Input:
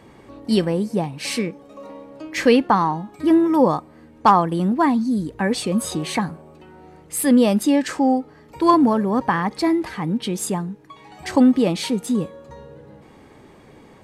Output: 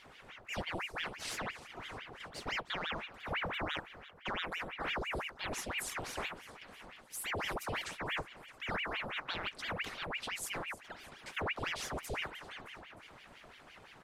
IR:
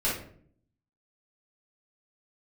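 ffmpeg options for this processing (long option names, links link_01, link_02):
-filter_complex "[0:a]highpass=frequency=280:poles=1,areverse,acompressor=threshold=-30dB:ratio=6,areverse,flanger=delay=2.3:depth=5.8:regen=-58:speed=1.7:shape=sinusoidal,asplit=2[link_01][link_02];[link_02]aecho=0:1:308|616|924|1232|1540:0.133|0.076|0.0433|0.0247|0.0141[link_03];[link_01][link_03]amix=inputs=2:normalize=0,aeval=exprs='val(0)*sin(2*PI*1400*n/s+1400*0.9/5.9*sin(2*PI*5.9*n/s))':channel_layout=same"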